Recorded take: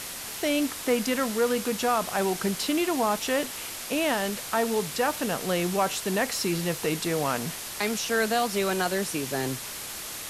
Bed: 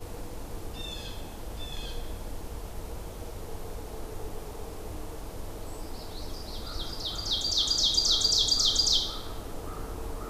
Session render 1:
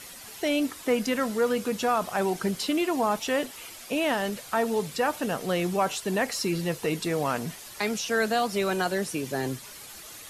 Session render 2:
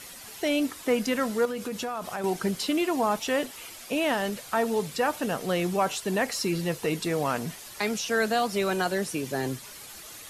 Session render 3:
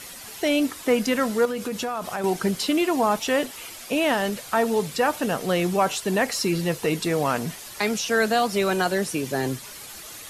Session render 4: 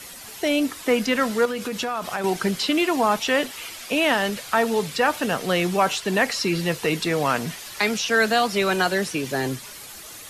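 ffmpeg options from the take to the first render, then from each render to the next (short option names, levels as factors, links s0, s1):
-af "afftdn=nr=10:nf=-37"
-filter_complex "[0:a]asettb=1/sr,asplit=3[s0][s1][s2];[s0]atrim=end=1.454[s3];[s1]atrim=start=1.45:end=2.24,asetpts=PTS-STARTPTS,afade=t=in:d=0.004:c=qsin,afade=t=out:st=0.786:d=0.004:c=qsin,acompressor=threshold=0.0355:ratio=4:attack=3.2:release=140:knee=1:detection=peak[s4];[s2]atrim=start=2.236[s5];[s3][s4]acrossfade=d=0.004:c1=hsin:c2=qsin[s6];[s6][s5]acrossfade=d=0.004:c1=qsin:c2=hsin"
-af "volume=1.58"
-filter_complex "[0:a]acrossover=split=210|1200|5400[s0][s1][s2][s3];[s2]dynaudnorm=f=100:g=17:m=1.78[s4];[s3]alimiter=level_in=1.58:limit=0.0631:level=0:latency=1:release=202,volume=0.631[s5];[s0][s1][s4][s5]amix=inputs=4:normalize=0"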